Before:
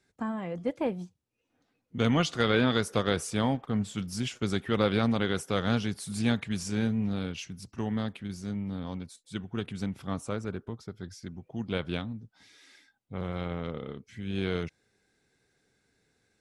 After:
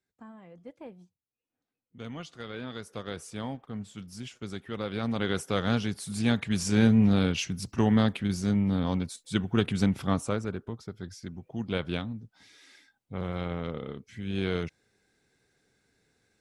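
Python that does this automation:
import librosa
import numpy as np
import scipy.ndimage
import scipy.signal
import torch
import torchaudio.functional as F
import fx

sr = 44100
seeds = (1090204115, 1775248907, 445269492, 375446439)

y = fx.gain(x, sr, db=fx.line((2.52, -15.0), (3.28, -8.5), (4.87, -8.5), (5.3, 0.5), (6.22, 0.5), (6.95, 8.5), (9.99, 8.5), (10.53, 1.0)))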